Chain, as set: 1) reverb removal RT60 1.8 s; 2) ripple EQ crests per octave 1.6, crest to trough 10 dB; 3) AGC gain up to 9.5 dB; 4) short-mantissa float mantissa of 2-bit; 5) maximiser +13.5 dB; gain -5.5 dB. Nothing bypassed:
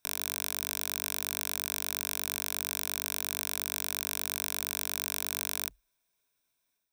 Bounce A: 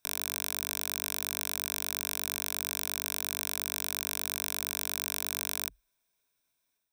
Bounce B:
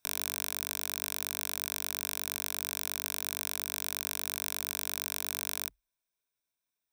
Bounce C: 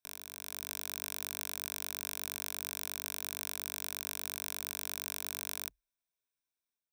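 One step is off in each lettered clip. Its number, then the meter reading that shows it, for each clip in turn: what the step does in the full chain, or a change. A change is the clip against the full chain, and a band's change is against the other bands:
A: 4, distortion -21 dB; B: 3, loudness change -1.5 LU; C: 5, momentary loudness spread change +2 LU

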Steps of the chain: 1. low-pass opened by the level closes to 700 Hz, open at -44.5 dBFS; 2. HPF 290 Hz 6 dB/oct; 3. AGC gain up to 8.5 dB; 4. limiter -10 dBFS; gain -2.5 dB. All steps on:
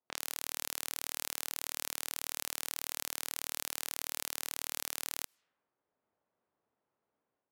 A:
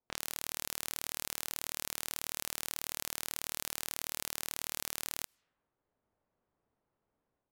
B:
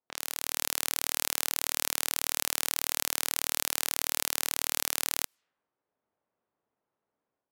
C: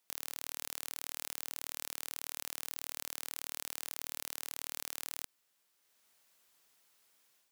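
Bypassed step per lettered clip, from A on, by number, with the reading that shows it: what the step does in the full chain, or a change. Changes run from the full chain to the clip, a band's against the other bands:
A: 2, 125 Hz band +7.5 dB; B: 4, mean gain reduction 7.5 dB; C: 1, crest factor change +3.0 dB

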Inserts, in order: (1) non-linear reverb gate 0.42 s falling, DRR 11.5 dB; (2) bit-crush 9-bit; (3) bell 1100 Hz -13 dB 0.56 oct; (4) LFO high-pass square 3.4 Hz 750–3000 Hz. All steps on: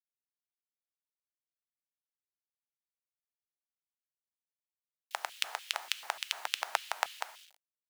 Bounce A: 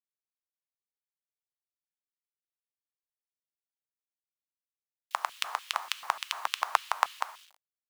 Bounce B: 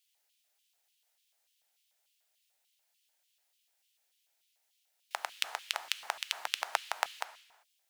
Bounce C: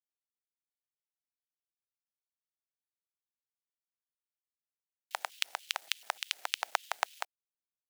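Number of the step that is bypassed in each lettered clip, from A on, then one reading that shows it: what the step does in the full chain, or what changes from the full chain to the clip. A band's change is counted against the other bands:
3, 1 kHz band +6.5 dB; 2, distortion -24 dB; 1, momentary loudness spread change -1 LU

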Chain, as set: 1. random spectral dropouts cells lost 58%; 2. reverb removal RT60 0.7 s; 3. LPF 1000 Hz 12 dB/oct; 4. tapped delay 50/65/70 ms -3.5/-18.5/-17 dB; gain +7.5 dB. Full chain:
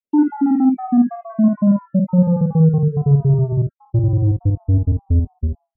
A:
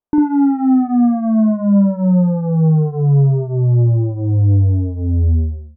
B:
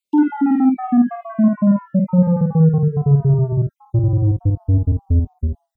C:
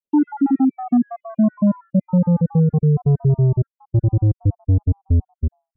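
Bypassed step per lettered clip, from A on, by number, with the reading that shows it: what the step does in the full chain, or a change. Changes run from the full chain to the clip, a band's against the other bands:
1, crest factor change -3.5 dB; 3, 1 kHz band +1.5 dB; 4, crest factor change -2.5 dB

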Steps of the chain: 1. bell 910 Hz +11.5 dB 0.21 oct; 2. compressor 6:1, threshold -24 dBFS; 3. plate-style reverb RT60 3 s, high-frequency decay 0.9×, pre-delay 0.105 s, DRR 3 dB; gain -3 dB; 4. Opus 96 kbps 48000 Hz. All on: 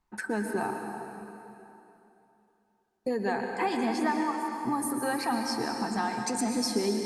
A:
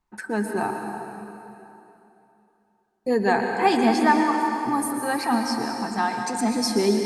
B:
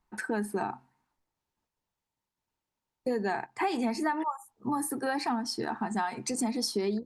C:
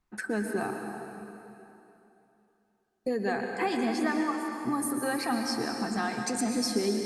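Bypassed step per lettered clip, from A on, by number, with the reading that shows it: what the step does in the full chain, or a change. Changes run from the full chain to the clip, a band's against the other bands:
2, mean gain reduction 5.0 dB; 3, momentary loudness spread change -7 LU; 1, 1 kHz band -3.5 dB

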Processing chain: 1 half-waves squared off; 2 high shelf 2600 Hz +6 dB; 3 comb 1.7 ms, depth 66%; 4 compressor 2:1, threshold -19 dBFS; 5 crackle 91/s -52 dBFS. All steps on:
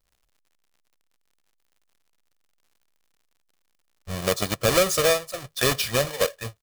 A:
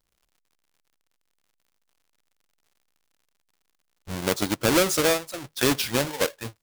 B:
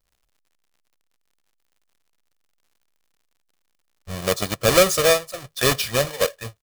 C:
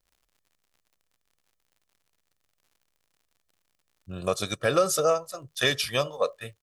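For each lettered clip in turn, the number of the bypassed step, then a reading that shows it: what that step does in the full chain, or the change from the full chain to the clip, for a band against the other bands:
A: 3, 250 Hz band +6.5 dB; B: 4, momentary loudness spread change +3 LU; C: 1, distortion -5 dB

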